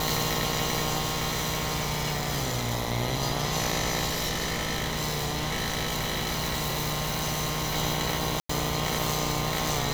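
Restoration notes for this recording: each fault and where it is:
buzz 60 Hz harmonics 17 -33 dBFS
0.99–2.72 clipped -23.5 dBFS
4.05–7.76 clipped -24.5 dBFS
8.4–8.49 gap 94 ms

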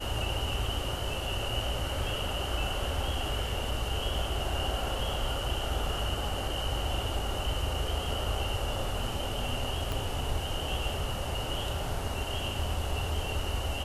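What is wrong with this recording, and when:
9.92 pop

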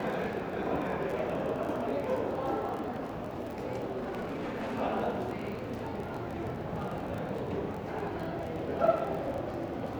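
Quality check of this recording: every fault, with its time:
crackle 28/s -37 dBFS
3.96–4.76 clipped -32.5 dBFS

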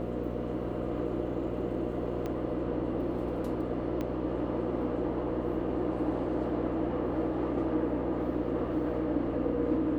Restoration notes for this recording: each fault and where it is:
buzz 60 Hz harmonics 10 -36 dBFS
2.26 pop -23 dBFS
4.01 pop -22 dBFS

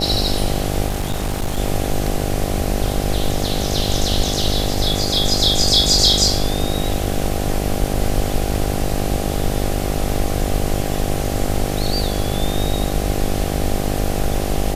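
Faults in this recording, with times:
buzz 50 Hz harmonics 16 -23 dBFS
0.88–1.59 clipped -16.5 dBFS

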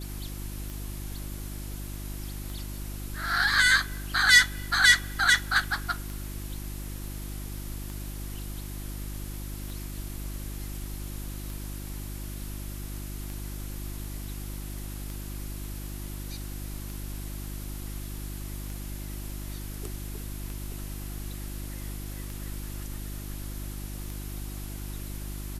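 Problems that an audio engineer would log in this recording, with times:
hum 50 Hz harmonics 7 -37 dBFS
tick 33 1/3 rpm

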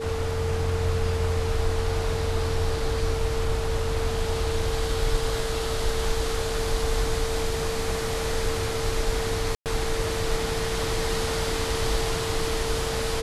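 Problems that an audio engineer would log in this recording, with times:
tone 450 Hz -29 dBFS
9.55–9.66 gap 0.108 s

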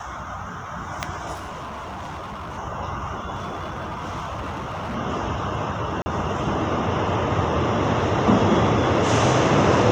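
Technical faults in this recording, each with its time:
1.33–2.59 clipped -30 dBFS
3.35–4.96 clipped -26 dBFS
6.02–6.06 gap 40 ms

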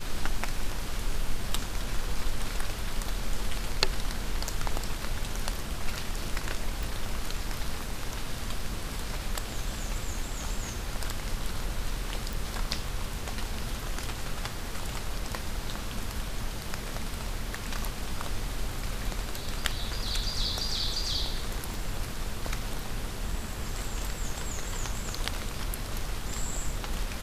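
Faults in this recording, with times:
6.83 pop
12.33 pop
21.74 pop

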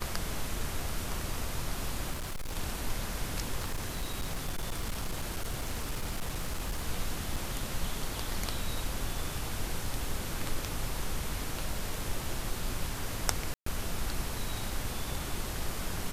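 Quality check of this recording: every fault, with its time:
2.11–2.57 clipped -32.5 dBFS
3.58–6.87 clipped -29 dBFS
7.36–7.37 gap 5.2 ms
13.54–13.66 gap 0.124 s

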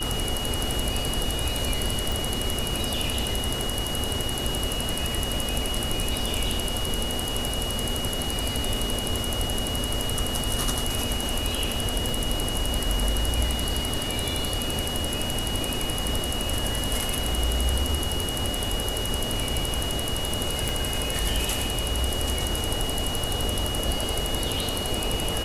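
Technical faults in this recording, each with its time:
tone 2900 Hz -31 dBFS
2.12 pop
12.09 pop
20.69 pop

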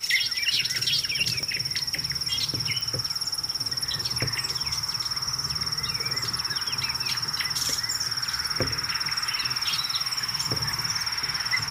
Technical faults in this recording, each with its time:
1.43 pop -18 dBFS
2.81 pop

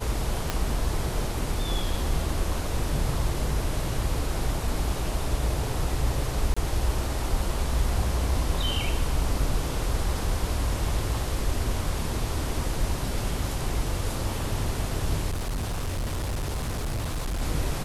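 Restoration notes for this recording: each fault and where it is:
0.5 pop -10 dBFS
6.54–6.57 gap 25 ms
15.3–17.42 clipped -25.5 dBFS

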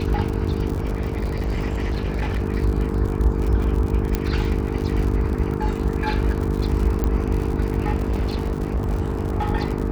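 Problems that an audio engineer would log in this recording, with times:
buzz 50 Hz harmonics 9 -26 dBFS
crackle 92/s -27 dBFS
0.74–2.43 clipped -19.5 dBFS
4.15 pop -8 dBFS
7.04 pop -10 dBFS
7.96–9.49 clipped -18 dBFS

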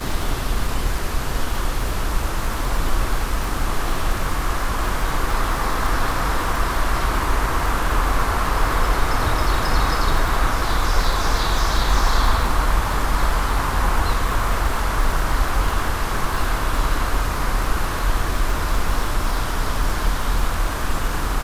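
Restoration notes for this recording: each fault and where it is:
crackle 44/s -24 dBFS

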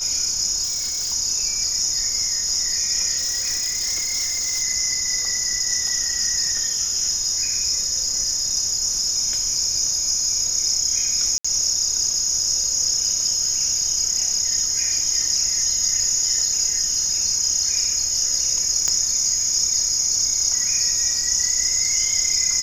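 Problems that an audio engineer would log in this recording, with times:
tone 5100 Hz -27 dBFS
0.63–1.14 clipped -21.5 dBFS
3.17–4.63 clipped -20 dBFS
11.38–11.45 gap 65 ms
18.88 pop -7 dBFS

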